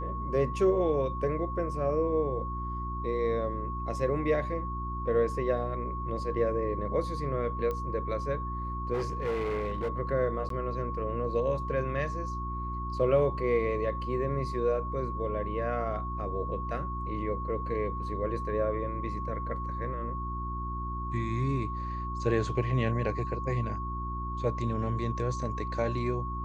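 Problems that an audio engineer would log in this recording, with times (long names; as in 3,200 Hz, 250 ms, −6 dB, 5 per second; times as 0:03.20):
mains hum 60 Hz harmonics 6 −36 dBFS
whistle 1,100 Hz −36 dBFS
0:07.71: click −22 dBFS
0:08.93–0:09.89: clipping −27 dBFS
0:10.49–0:10.50: drop-out 13 ms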